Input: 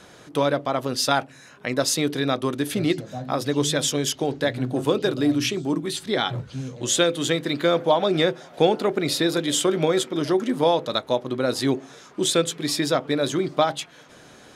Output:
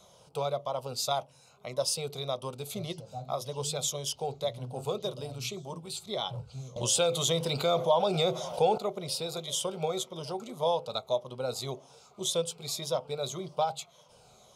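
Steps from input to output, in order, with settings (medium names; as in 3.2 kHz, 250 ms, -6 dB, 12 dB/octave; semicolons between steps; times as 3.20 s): drifting ripple filter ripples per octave 1.2, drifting -1.8 Hz, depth 7 dB; static phaser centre 720 Hz, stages 4; 6.76–8.78 s: level flattener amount 50%; trim -7 dB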